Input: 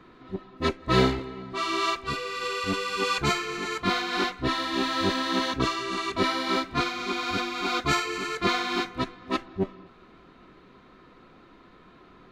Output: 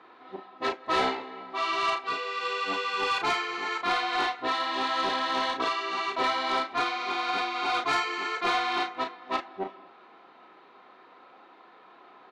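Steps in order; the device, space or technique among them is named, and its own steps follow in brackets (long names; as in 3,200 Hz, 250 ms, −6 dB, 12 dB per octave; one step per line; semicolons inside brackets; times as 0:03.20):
intercom (band-pass filter 470–4,200 Hz; parametric band 810 Hz +9.5 dB 0.42 octaves; soft clipping −19.5 dBFS, distortion −17 dB; double-tracking delay 35 ms −6.5 dB)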